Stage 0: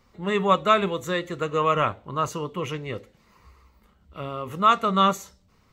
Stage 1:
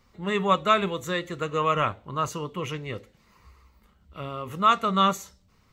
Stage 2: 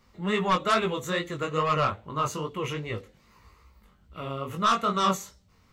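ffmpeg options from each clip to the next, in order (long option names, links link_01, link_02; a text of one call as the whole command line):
ffmpeg -i in.wav -af "equalizer=frequency=500:width=0.47:gain=-3" out.wav
ffmpeg -i in.wav -af "aeval=exprs='0.531*(cos(1*acos(clip(val(0)/0.531,-1,1)))-cos(1*PI/2))+0.237*(cos(5*acos(clip(val(0)/0.531,-1,1)))-cos(5*PI/2))':channel_layout=same,flanger=delay=17.5:depth=5.1:speed=2.4,volume=-6.5dB" out.wav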